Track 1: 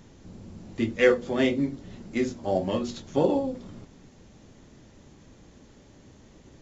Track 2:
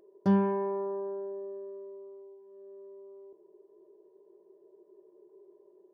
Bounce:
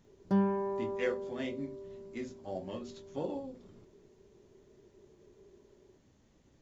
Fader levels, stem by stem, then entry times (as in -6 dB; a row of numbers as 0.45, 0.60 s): -14.0, -3.5 dB; 0.00, 0.05 s